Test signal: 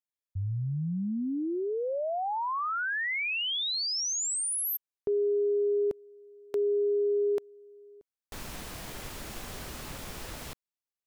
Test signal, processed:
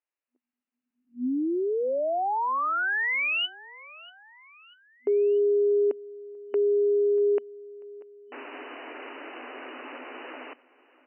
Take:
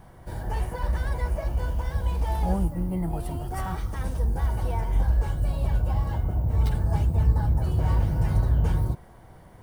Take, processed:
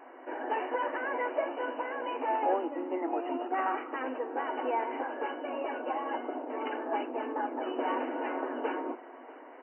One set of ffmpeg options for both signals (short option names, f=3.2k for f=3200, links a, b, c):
-filter_complex "[0:a]afftfilt=real='re*between(b*sr/4096,240,3000)':imag='im*between(b*sr/4096,240,3000)':win_size=4096:overlap=0.75,asplit=2[a][b];[b]aecho=0:1:640|1280|1920:0.0891|0.0419|0.0197[c];[a][c]amix=inputs=2:normalize=0,volume=4.5dB"